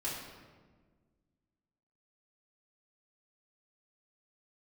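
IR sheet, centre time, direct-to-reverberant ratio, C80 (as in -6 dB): 72 ms, -8.0 dB, 3.5 dB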